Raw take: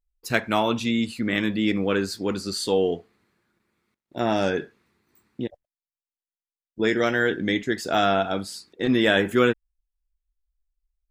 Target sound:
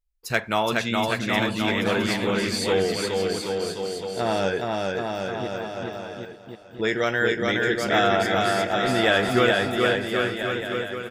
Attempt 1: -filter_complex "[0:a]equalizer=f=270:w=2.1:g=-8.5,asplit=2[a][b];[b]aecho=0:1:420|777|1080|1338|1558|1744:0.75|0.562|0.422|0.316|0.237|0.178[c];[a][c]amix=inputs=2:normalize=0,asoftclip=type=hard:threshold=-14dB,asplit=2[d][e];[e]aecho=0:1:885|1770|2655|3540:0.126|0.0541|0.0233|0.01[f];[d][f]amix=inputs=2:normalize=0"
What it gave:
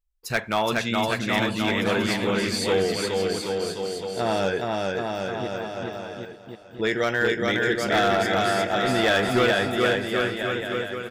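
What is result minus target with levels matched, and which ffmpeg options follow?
hard clip: distortion +23 dB
-filter_complex "[0:a]equalizer=f=270:w=2.1:g=-8.5,asplit=2[a][b];[b]aecho=0:1:420|777|1080|1338|1558|1744:0.75|0.562|0.422|0.316|0.237|0.178[c];[a][c]amix=inputs=2:normalize=0,asoftclip=type=hard:threshold=-6.5dB,asplit=2[d][e];[e]aecho=0:1:885|1770|2655|3540:0.126|0.0541|0.0233|0.01[f];[d][f]amix=inputs=2:normalize=0"

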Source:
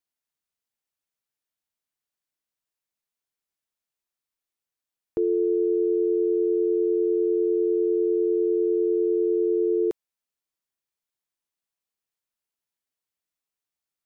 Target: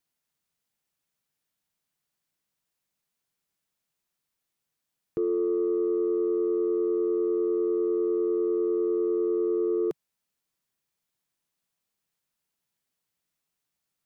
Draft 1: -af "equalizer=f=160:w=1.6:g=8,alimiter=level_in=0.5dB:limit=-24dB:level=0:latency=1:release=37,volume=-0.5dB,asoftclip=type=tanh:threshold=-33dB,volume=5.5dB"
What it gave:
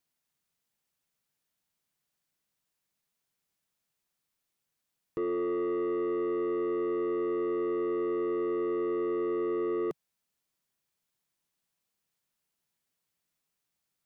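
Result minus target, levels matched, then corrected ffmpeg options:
soft clip: distortion +13 dB
-af "equalizer=f=160:w=1.6:g=8,alimiter=level_in=0.5dB:limit=-24dB:level=0:latency=1:release=37,volume=-0.5dB,asoftclip=type=tanh:threshold=-23dB,volume=5.5dB"

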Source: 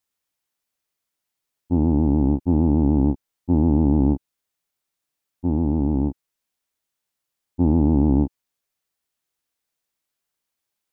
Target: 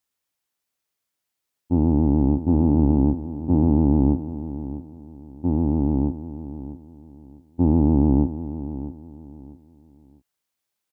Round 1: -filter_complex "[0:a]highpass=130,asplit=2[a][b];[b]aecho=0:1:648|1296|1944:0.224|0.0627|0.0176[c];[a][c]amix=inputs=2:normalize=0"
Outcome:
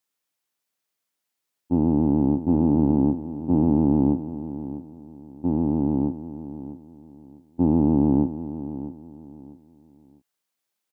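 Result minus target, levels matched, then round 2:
125 Hz band -3.0 dB
-filter_complex "[0:a]highpass=36,asplit=2[a][b];[b]aecho=0:1:648|1296|1944:0.224|0.0627|0.0176[c];[a][c]amix=inputs=2:normalize=0"

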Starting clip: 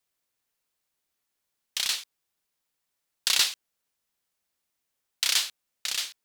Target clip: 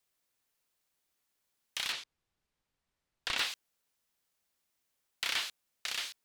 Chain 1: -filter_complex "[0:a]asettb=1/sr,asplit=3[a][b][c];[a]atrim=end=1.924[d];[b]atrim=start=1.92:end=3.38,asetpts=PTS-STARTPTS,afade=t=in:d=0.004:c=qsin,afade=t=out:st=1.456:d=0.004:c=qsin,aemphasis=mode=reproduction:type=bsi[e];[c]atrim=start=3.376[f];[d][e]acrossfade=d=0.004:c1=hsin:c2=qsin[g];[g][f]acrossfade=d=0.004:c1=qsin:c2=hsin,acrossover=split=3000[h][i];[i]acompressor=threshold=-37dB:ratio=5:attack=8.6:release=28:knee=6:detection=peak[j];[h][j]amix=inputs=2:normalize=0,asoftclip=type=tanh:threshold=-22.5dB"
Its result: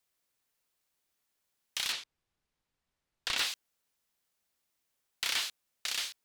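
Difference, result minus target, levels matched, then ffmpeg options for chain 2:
compressor: peak gain reduction -6 dB
-filter_complex "[0:a]asettb=1/sr,asplit=3[a][b][c];[a]atrim=end=1.924[d];[b]atrim=start=1.92:end=3.38,asetpts=PTS-STARTPTS,afade=t=in:d=0.004:c=qsin,afade=t=out:st=1.456:d=0.004:c=qsin,aemphasis=mode=reproduction:type=bsi[e];[c]atrim=start=3.376[f];[d][e]acrossfade=d=0.004:c1=hsin:c2=qsin[g];[g][f]acrossfade=d=0.004:c1=qsin:c2=hsin,acrossover=split=3000[h][i];[i]acompressor=threshold=-44.5dB:ratio=5:attack=8.6:release=28:knee=6:detection=peak[j];[h][j]amix=inputs=2:normalize=0,asoftclip=type=tanh:threshold=-22.5dB"

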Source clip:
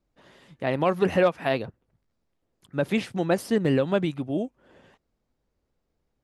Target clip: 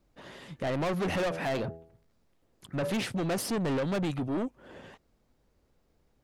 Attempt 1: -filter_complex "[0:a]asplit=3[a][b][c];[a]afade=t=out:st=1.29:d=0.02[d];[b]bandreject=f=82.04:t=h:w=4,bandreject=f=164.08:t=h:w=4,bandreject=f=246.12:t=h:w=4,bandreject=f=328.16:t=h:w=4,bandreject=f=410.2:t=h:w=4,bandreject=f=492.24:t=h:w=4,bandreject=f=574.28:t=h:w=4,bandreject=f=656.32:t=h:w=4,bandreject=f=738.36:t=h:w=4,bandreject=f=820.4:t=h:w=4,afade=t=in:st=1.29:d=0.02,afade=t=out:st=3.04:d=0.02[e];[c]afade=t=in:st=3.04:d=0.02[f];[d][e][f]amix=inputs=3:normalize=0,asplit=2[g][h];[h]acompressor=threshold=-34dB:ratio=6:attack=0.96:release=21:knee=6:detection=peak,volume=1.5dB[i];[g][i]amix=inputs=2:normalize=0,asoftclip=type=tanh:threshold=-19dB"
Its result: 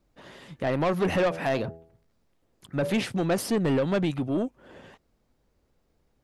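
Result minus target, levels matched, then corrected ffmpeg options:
soft clip: distortion -6 dB
-filter_complex "[0:a]asplit=3[a][b][c];[a]afade=t=out:st=1.29:d=0.02[d];[b]bandreject=f=82.04:t=h:w=4,bandreject=f=164.08:t=h:w=4,bandreject=f=246.12:t=h:w=4,bandreject=f=328.16:t=h:w=4,bandreject=f=410.2:t=h:w=4,bandreject=f=492.24:t=h:w=4,bandreject=f=574.28:t=h:w=4,bandreject=f=656.32:t=h:w=4,bandreject=f=738.36:t=h:w=4,bandreject=f=820.4:t=h:w=4,afade=t=in:st=1.29:d=0.02,afade=t=out:st=3.04:d=0.02[e];[c]afade=t=in:st=3.04:d=0.02[f];[d][e][f]amix=inputs=3:normalize=0,asplit=2[g][h];[h]acompressor=threshold=-34dB:ratio=6:attack=0.96:release=21:knee=6:detection=peak,volume=1.5dB[i];[g][i]amix=inputs=2:normalize=0,asoftclip=type=tanh:threshold=-27dB"

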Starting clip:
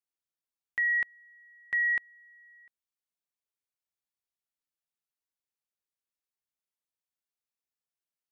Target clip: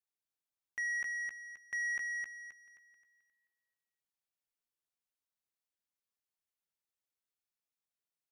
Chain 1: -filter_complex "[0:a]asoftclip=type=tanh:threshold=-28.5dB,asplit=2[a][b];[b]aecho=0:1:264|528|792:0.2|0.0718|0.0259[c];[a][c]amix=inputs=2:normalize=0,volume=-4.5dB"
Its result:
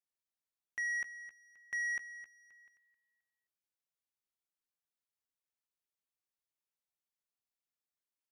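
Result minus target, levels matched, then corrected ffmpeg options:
echo-to-direct -11 dB
-filter_complex "[0:a]asoftclip=type=tanh:threshold=-28.5dB,asplit=2[a][b];[b]aecho=0:1:264|528|792|1056|1320:0.708|0.255|0.0917|0.033|0.0119[c];[a][c]amix=inputs=2:normalize=0,volume=-4.5dB"

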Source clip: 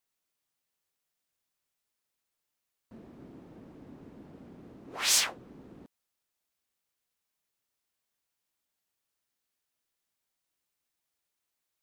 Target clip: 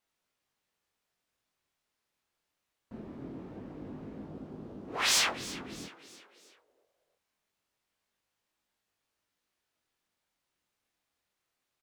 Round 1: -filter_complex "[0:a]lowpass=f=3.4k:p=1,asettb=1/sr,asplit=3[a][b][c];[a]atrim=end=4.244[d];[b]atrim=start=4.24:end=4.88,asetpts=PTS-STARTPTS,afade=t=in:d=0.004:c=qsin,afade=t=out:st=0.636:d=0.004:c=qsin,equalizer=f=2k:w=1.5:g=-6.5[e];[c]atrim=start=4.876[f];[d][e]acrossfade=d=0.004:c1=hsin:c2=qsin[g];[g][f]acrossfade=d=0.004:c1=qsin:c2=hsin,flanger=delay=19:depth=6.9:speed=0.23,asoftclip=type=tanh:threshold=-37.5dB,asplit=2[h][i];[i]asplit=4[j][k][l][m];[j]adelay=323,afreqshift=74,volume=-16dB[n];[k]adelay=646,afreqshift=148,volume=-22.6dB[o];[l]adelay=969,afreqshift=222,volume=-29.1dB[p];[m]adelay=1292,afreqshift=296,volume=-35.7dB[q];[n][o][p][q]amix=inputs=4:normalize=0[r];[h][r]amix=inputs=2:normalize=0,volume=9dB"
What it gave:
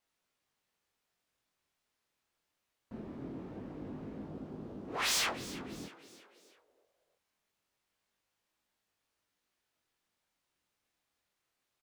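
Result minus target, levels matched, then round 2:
soft clip: distortion +9 dB
-filter_complex "[0:a]lowpass=f=3.4k:p=1,asettb=1/sr,asplit=3[a][b][c];[a]atrim=end=4.244[d];[b]atrim=start=4.24:end=4.88,asetpts=PTS-STARTPTS,afade=t=in:d=0.004:c=qsin,afade=t=out:st=0.636:d=0.004:c=qsin,equalizer=f=2k:w=1.5:g=-6.5[e];[c]atrim=start=4.876[f];[d][e]acrossfade=d=0.004:c1=hsin:c2=qsin[g];[g][f]acrossfade=d=0.004:c1=qsin:c2=hsin,flanger=delay=19:depth=6.9:speed=0.23,asoftclip=type=tanh:threshold=-28.5dB,asplit=2[h][i];[i]asplit=4[j][k][l][m];[j]adelay=323,afreqshift=74,volume=-16dB[n];[k]adelay=646,afreqshift=148,volume=-22.6dB[o];[l]adelay=969,afreqshift=222,volume=-29.1dB[p];[m]adelay=1292,afreqshift=296,volume=-35.7dB[q];[n][o][p][q]amix=inputs=4:normalize=0[r];[h][r]amix=inputs=2:normalize=0,volume=9dB"

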